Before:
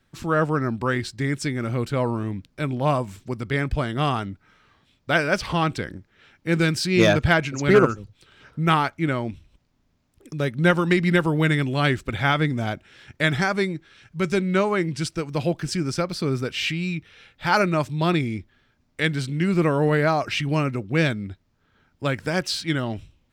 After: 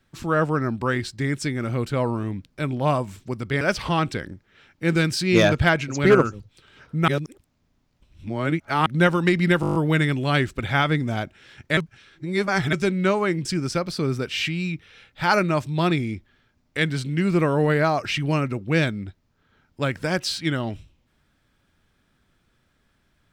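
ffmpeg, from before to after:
-filter_complex "[0:a]asplit=14[a][b][c][d][e][f][g][h][i][j][k][l][m][n];[a]atrim=end=3.612[o];[b]atrim=start=5.248:end=8.722[p];[c]atrim=start=8.718:end=10.502,asetpts=PTS-STARTPTS,areverse[q];[d]atrim=start=10.498:end=11.272[r];[e]atrim=start=11.248:end=11.272[s];[f]atrim=start=11.248:end=11.272[t];[g]atrim=start=11.248:end=11.272[u];[h]atrim=start=11.248:end=11.272[v];[i]atrim=start=11.248:end=11.272[w];[j]atrim=start=11.248:end=11.272[x];[k]atrim=start=11.248:end=13.272[y];[l]atrim=start=13.268:end=14.232,asetpts=PTS-STARTPTS,areverse[z];[m]atrim=start=14.228:end=14.952[aa];[n]atrim=start=15.678[ab];[o][p]acrossfade=d=0.004:c1=hsin:c2=hsin[ac];[ac][q]acrossfade=d=0.004:c1=hsin:c2=hsin[ad];[ad][r]acrossfade=d=0.004:c1=hsin:c2=hsin[ae];[ae][s]acrossfade=d=0.004:c1=hsin:c2=hsin[af];[af][t]acrossfade=d=0.004:c1=hsin:c2=hsin[ag];[ag][u]acrossfade=d=0.004:c1=hsin:c2=hsin[ah];[ah][v]acrossfade=d=0.004:c1=hsin:c2=hsin[ai];[ai][w]acrossfade=d=0.004:c1=hsin:c2=hsin[aj];[aj][x]acrossfade=d=0.004:c1=hsin:c2=hsin[ak];[ak][y]acrossfade=d=0.004:c1=hsin:c2=hsin[al];[al][z]acrossfade=d=0.004:c1=hsin:c2=hsin[am];[am][aa]acrossfade=d=0.004:c1=hsin:c2=hsin[an];[an][ab]acrossfade=d=0.004:c1=hsin:c2=hsin"

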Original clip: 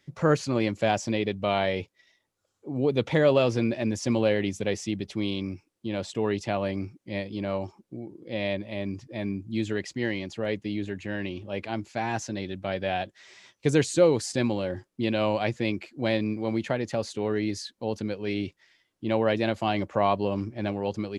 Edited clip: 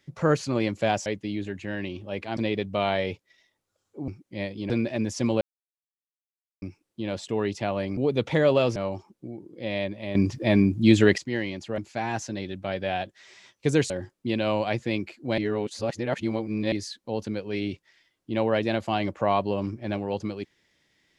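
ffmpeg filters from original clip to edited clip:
-filter_complex "[0:a]asplit=15[a][b][c][d][e][f][g][h][i][j][k][l][m][n][o];[a]atrim=end=1.062[p];[b]atrim=start=10.468:end=11.782[q];[c]atrim=start=1.058:end=2.772[r];[d]atrim=start=6.828:end=7.452[s];[e]atrim=start=3.558:end=4.27,asetpts=PTS-STARTPTS,afade=t=out:st=0.708:d=0.004:c=hsin[t];[f]atrim=start=4.27:end=5.48,asetpts=PTS-STARTPTS,volume=0[u];[g]atrim=start=5.48:end=6.832,asetpts=PTS-STARTPTS,afade=t=in:d=0.004:c=hsin[v];[h]atrim=start=2.768:end=3.562[w];[i]atrim=start=7.448:end=8.842[x];[j]atrim=start=8.838:end=9.872,asetpts=PTS-STARTPTS,volume=11.5dB[y];[k]atrim=start=9.868:end=10.472[z];[l]atrim=start=11.778:end=13.902[aa];[m]atrim=start=14.638:end=16.122[ab];[n]atrim=start=16.118:end=17.462,asetpts=PTS-STARTPTS,areverse[ac];[o]atrim=start=17.458[ad];[p][q]acrossfade=d=0.004:c1=hsin:c2=hsin[ae];[ae][r]acrossfade=d=0.004:c1=hsin:c2=hsin[af];[af][s]acrossfade=d=0.004:c1=hsin:c2=hsin[ag];[t][u][v]concat=n=3:v=0:a=1[ah];[ag][ah]acrossfade=d=0.004:c1=hsin:c2=hsin[ai];[ai][w]acrossfade=d=0.004:c1=hsin:c2=hsin[aj];[aj][x]acrossfade=d=0.004:c1=hsin:c2=hsin[ak];[ak][y]acrossfade=d=0.004:c1=hsin:c2=hsin[al];[al][z]acrossfade=d=0.004:c1=hsin:c2=hsin[am];[am][aa]acrossfade=d=0.004:c1=hsin:c2=hsin[an];[an][ab]acrossfade=d=0.004:c1=hsin:c2=hsin[ao];[ao][ac]acrossfade=d=0.004:c1=hsin:c2=hsin[ap];[ap][ad]acrossfade=d=0.004:c1=hsin:c2=hsin"

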